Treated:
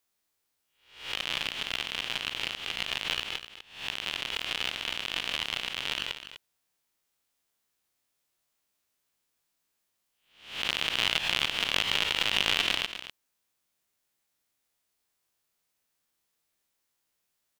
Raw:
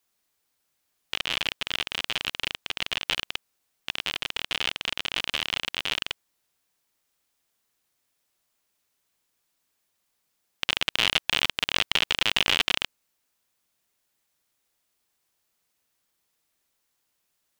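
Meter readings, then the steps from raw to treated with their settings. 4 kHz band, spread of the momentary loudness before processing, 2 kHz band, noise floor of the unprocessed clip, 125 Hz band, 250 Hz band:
−2.5 dB, 10 LU, −2.5 dB, −76 dBFS, −2.5 dB, −3.0 dB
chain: peak hold with a rise ahead of every peak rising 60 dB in 0.52 s
single-tap delay 250 ms −11.5 dB
level −5.5 dB

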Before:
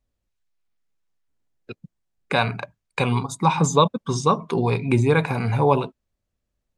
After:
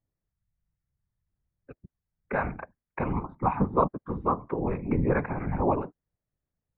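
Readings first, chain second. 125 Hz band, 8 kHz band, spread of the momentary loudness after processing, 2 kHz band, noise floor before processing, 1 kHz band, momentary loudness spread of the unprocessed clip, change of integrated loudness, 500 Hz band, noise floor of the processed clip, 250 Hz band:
−9.5 dB, below −40 dB, 9 LU, −9.5 dB, −80 dBFS, −6.5 dB, 7 LU, −7.5 dB, −7.5 dB, below −85 dBFS, −5.5 dB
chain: elliptic low-pass filter 2,000 Hz, stop band 70 dB
random phases in short frames
level −6.5 dB

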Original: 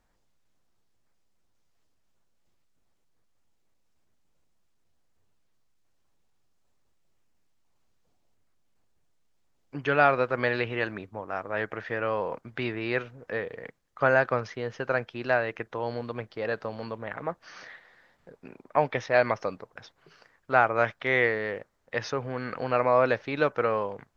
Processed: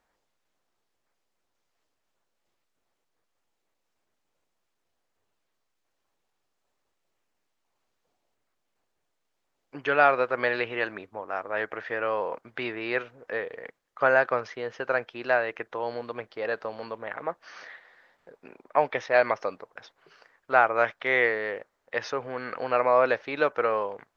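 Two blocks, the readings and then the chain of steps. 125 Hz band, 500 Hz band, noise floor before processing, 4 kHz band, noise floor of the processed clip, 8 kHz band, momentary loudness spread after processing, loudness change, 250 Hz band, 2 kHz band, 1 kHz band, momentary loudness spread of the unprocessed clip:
−10.5 dB, +0.5 dB, −70 dBFS, 0.0 dB, −78 dBFS, can't be measured, 15 LU, +1.0 dB, −3.5 dB, +1.5 dB, +1.5 dB, 14 LU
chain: bass and treble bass −13 dB, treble −4 dB
level +1.5 dB

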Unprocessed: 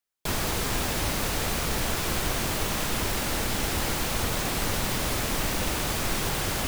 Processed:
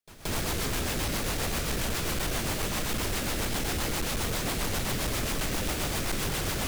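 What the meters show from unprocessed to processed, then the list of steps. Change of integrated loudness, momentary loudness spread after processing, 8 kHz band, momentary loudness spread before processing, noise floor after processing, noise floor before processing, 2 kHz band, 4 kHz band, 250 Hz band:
−2.5 dB, 0 LU, −2.5 dB, 0 LU, −32 dBFS, −29 dBFS, −3.0 dB, −2.5 dB, −1.5 dB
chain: echo ahead of the sound 177 ms −21 dB
rotating-speaker cabinet horn 7.5 Hz
gain into a clipping stage and back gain 27 dB
level +1.5 dB

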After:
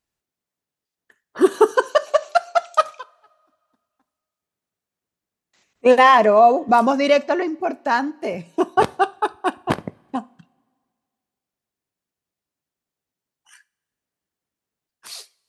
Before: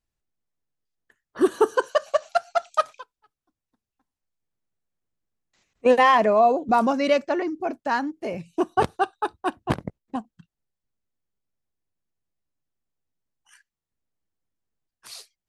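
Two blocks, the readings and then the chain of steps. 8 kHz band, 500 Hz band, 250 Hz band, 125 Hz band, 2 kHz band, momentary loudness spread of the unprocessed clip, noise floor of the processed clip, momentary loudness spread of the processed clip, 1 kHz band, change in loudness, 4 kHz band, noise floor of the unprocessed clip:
can't be measured, +4.5 dB, +3.5 dB, +0.5 dB, +5.0 dB, 16 LU, below −85 dBFS, 17 LU, +5.0 dB, +5.0 dB, +5.0 dB, below −85 dBFS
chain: high-pass filter 190 Hz 6 dB per octave
coupled-rooms reverb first 0.37 s, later 2 s, from −20 dB, DRR 17 dB
level +5 dB

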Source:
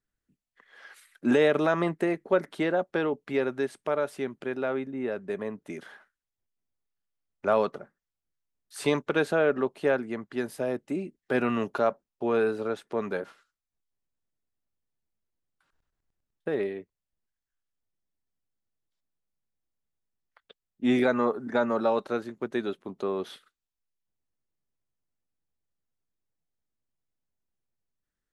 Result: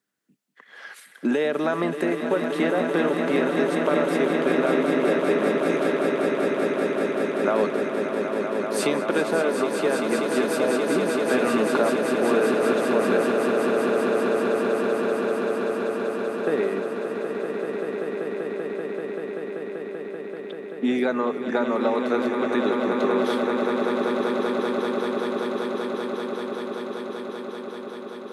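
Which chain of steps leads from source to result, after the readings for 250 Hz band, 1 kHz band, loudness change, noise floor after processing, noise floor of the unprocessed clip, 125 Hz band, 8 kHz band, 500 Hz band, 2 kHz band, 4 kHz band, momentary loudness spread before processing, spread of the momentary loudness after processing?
+7.5 dB, +7.0 dB, +4.5 dB, −37 dBFS, below −85 dBFS, +4.0 dB, +12.5 dB, +7.5 dB, +7.0 dB, +8.5 dB, 10 LU, 10 LU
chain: high-pass filter 170 Hz 24 dB per octave
downward compressor 4 to 1, threshold −30 dBFS, peak gain reduction 11 dB
echo that builds up and dies away 193 ms, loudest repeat 8, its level −7.5 dB
level +8.5 dB

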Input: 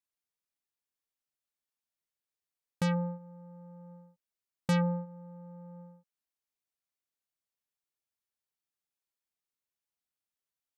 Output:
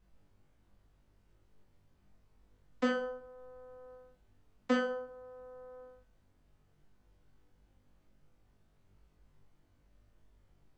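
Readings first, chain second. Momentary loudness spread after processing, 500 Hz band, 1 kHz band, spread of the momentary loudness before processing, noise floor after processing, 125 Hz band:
21 LU, +3.0 dB, −1.5 dB, 21 LU, −70 dBFS, below −25 dB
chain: downward compressor 2.5 to 1, threshold −33 dBFS, peak gain reduction 5.5 dB
channel vocoder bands 32, saw 253 Hz
background noise brown −68 dBFS
on a send: flutter between parallel walls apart 3.5 metres, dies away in 0.44 s
on the sum: level +1 dB

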